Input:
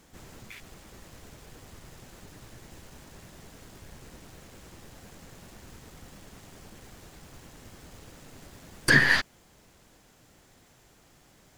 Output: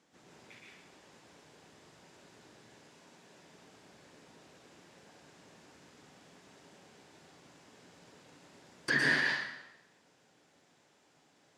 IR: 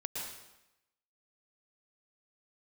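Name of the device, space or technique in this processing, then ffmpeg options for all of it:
supermarket ceiling speaker: -filter_complex "[0:a]asettb=1/sr,asplit=3[link_01][link_02][link_03];[link_01]atrim=end=2.744[link_04];[link_02]atrim=start=2.74:end=3.38,asetpts=PTS-STARTPTS,afade=type=in:duration=0.004:curve=qsin,afade=type=out:start_time=0.636:duration=0.004:curve=qsin,highpass=140[link_05];[link_03]atrim=start=3.376[link_06];[link_04][link_05]acrossfade=duration=0.004:curve1=hsin:curve2=qsin[link_07];[link_07][link_06]acrossfade=duration=0.004:curve1=qsin:curve2=hsin,highpass=200,lowpass=6700[link_08];[1:a]atrim=start_sample=2205[link_09];[link_08][link_09]afir=irnorm=-1:irlink=0,volume=-7.5dB"

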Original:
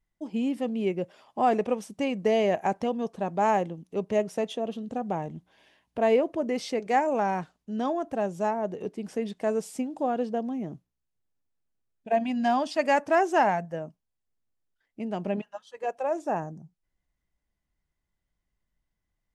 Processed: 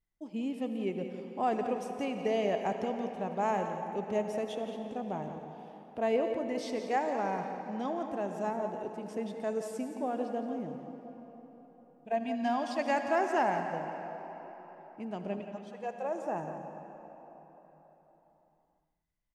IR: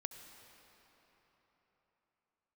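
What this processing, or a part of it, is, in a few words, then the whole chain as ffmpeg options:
cave: -filter_complex "[0:a]aecho=1:1:174:0.282[link_01];[1:a]atrim=start_sample=2205[link_02];[link_01][link_02]afir=irnorm=-1:irlink=0,volume=-3.5dB"

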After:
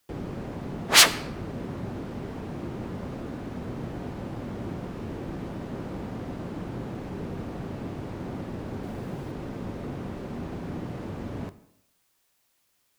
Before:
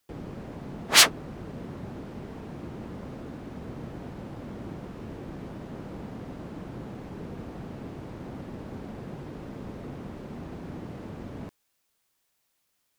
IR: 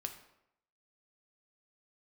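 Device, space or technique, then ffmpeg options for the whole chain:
saturated reverb return: -filter_complex "[0:a]asplit=2[link_01][link_02];[1:a]atrim=start_sample=2205[link_03];[link_02][link_03]afir=irnorm=-1:irlink=0,asoftclip=type=tanh:threshold=-23.5dB,volume=0.5dB[link_04];[link_01][link_04]amix=inputs=2:normalize=0,asettb=1/sr,asplit=3[link_05][link_06][link_07];[link_05]atrim=end=8.834[link_08];[link_06]atrim=start=8.83:end=9.32,asetpts=PTS-STARTPTS,afade=type=in:duration=0.004:curve=qsin,afade=type=out:start_time=0.486:duration=0.004:curve=qsin,highshelf=frequency=8600:gain=6[link_09];[link_07]atrim=start=9.316[link_10];[link_08][link_09]acrossfade=duration=0.004:curve1=hsin:curve2=qsin[link_11];[link_11][link_10]acrossfade=duration=0.004:curve1=qsin:curve2=hsin,volume=-1dB"

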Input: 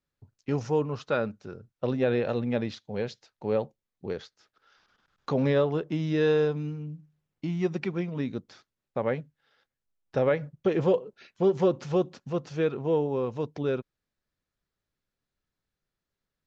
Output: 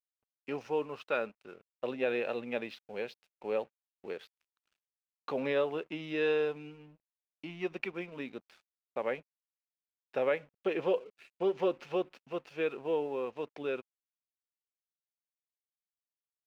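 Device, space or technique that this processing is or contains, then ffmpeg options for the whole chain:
pocket radio on a weak battery: -af "highpass=350,lowpass=4100,aeval=exprs='sgn(val(0))*max(abs(val(0))-0.00126,0)':channel_layout=same,equalizer=frequency=2600:width_type=o:width=0.5:gain=9,volume=-4.5dB"

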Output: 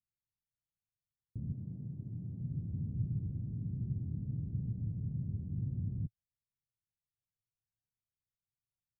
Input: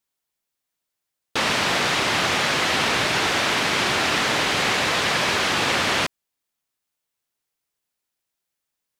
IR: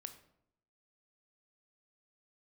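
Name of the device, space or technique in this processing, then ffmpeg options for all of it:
the neighbour's flat through the wall: -filter_complex "[0:a]lowpass=frequency=160:width=0.5412,lowpass=frequency=160:width=1.3066,equalizer=frequency=110:width_type=o:width=0.75:gain=6,asettb=1/sr,asplit=3[link_01][link_02][link_03];[link_01]atrim=end=1.524[link_04];[link_02]atrim=start=1.52:end=2.41,asetpts=PTS-STARTPTS,afade=type=in:duration=0.004:curve=qsin,afade=type=out:start_time=0.886:duration=0.004:curve=qsin,highpass=frequency=210:poles=1[link_05];[link_03]atrim=start=2.406[link_06];[link_04][link_05]acrossfade=duration=0.004:curve1=hsin:curve2=qsin[link_07];[link_07][link_06]acrossfade=duration=0.004:curve1=qsin:curve2=hsin,volume=-2dB"

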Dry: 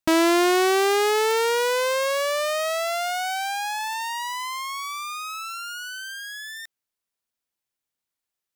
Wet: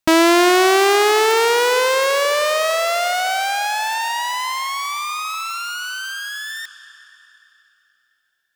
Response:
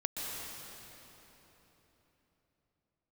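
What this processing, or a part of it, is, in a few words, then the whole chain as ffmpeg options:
filtered reverb send: -filter_complex "[0:a]asplit=2[link_01][link_02];[link_02]highpass=550,lowpass=8100[link_03];[1:a]atrim=start_sample=2205[link_04];[link_03][link_04]afir=irnorm=-1:irlink=0,volume=-12.5dB[link_05];[link_01][link_05]amix=inputs=2:normalize=0,volume=5.5dB"

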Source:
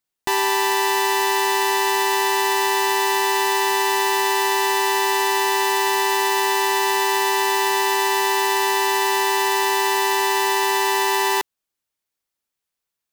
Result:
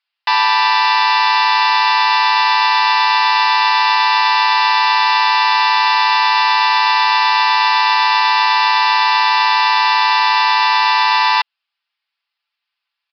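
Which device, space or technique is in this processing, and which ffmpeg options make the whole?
musical greeting card: -af "aecho=1:1:5.9:0.64,aresample=11025,aresample=44100,highpass=frequency=860:width=0.5412,highpass=frequency=860:width=1.3066,equalizer=frequency=2700:width_type=o:width=0.43:gain=5.5,volume=7dB"

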